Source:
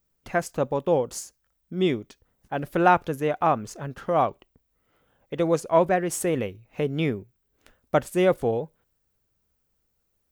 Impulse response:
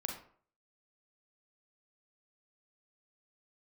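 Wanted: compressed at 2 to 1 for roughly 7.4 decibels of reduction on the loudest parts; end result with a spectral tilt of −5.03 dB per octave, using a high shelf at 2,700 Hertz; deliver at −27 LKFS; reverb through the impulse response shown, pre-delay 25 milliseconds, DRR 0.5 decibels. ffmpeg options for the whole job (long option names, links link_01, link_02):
-filter_complex "[0:a]highshelf=frequency=2700:gain=3.5,acompressor=threshold=-26dB:ratio=2,asplit=2[link_01][link_02];[1:a]atrim=start_sample=2205,adelay=25[link_03];[link_02][link_03]afir=irnorm=-1:irlink=0,volume=-1.5dB[link_04];[link_01][link_04]amix=inputs=2:normalize=0"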